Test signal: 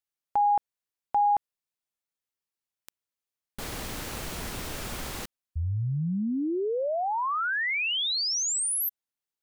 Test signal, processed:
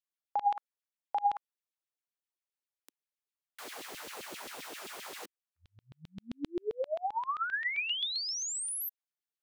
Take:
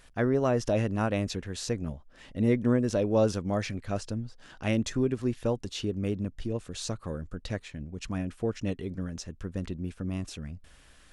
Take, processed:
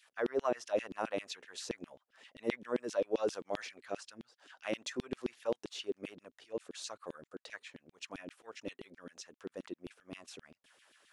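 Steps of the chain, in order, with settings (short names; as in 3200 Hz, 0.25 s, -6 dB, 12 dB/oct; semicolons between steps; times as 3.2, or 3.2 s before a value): LFO high-pass saw down 7.6 Hz 270–3500 Hz; gain -8.5 dB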